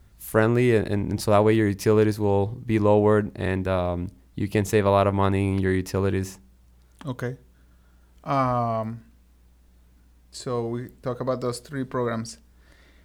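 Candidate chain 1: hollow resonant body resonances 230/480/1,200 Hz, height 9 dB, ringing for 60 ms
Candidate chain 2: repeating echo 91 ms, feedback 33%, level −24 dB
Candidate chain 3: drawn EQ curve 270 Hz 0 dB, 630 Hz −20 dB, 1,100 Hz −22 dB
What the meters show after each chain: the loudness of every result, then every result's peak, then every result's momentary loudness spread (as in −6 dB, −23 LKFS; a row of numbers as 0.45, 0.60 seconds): −20.5, −23.5, −28.0 LKFS; −3.0, −5.0, −13.0 dBFS; 13, 14, 12 LU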